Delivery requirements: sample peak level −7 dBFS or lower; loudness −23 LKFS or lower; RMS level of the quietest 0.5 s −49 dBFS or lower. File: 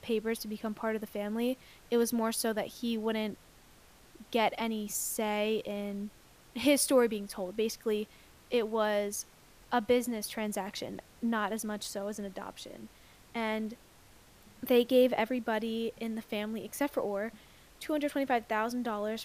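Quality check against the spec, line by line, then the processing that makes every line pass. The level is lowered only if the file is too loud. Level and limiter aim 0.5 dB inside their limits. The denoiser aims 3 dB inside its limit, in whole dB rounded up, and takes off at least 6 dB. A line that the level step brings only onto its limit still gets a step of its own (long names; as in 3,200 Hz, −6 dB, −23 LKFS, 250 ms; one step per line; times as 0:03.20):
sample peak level −14.5 dBFS: in spec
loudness −32.5 LKFS: in spec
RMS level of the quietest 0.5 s −58 dBFS: in spec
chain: no processing needed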